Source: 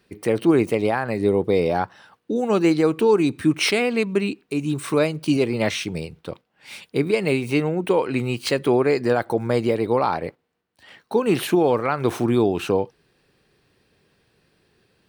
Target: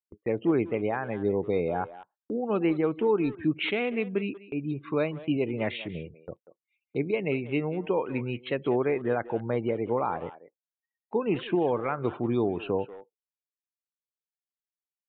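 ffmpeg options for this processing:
-filter_complex "[0:a]afftdn=nr=31:nf=-33,agate=range=0.0562:threshold=0.0158:ratio=16:detection=peak,asplit=2[s0][s1];[s1]adelay=190,highpass=300,lowpass=3400,asoftclip=type=hard:threshold=0.133,volume=0.2[s2];[s0][s2]amix=inputs=2:normalize=0,aresample=8000,aresample=44100,volume=0.422"

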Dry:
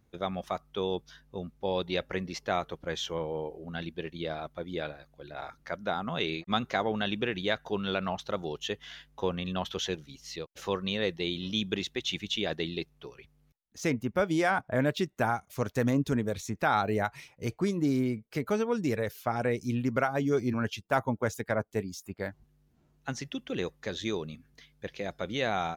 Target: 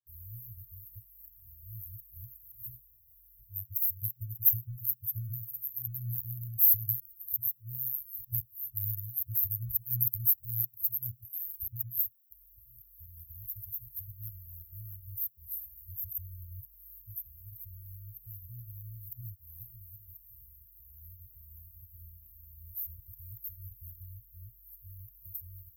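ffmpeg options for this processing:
-af "areverse,aexciter=amount=13.8:drive=9.1:freq=3000,afftfilt=real='re*(1-between(b*sr/4096,120,12000))':imag='im*(1-between(b*sr/4096,120,12000))':win_size=4096:overlap=0.75"

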